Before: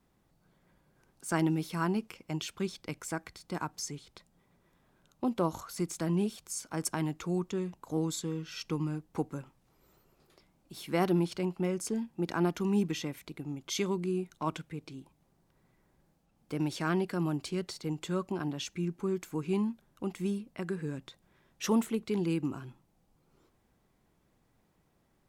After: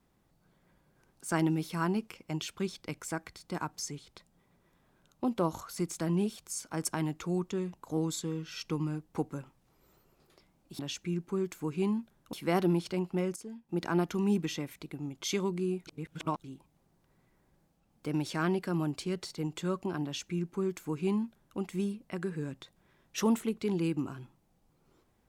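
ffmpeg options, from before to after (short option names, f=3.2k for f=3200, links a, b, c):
-filter_complex "[0:a]asplit=7[a][b][c][d][e][f][g];[a]atrim=end=10.792[h];[b]atrim=start=18.498:end=20.042[i];[c]atrim=start=10.788:end=11.822[j];[d]atrim=start=11.818:end=12.152,asetpts=PTS-STARTPTS,volume=-11dB[k];[e]atrim=start=12.148:end=14.332[l];[f]atrim=start=14.328:end=14.902,asetpts=PTS-STARTPTS,areverse[m];[g]atrim=start=14.898[n];[h][i]acrossfade=d=0.004:c1=hsin:c2=hsin[o];[o][j]acrossfade=d=0.004:c1=hsin:c2=hsin[p];[p][k]acrossfade=d=0.004:c1=hsin:c2=hsin[q];[q][l]acrossfade=d=0.004:c1=hsin:c2=hsin[r];[r][m]acrossfade=d=0.004:c1=hsin:c2=hsin[s];[s][n]acrossfade=d=0.004:c1=hsin:c2=hsin"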